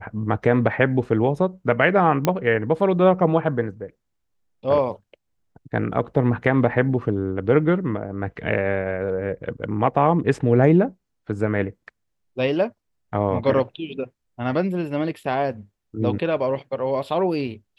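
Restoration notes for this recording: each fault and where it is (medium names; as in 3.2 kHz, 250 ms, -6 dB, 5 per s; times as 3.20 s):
2.25 s: pop -6 dBFS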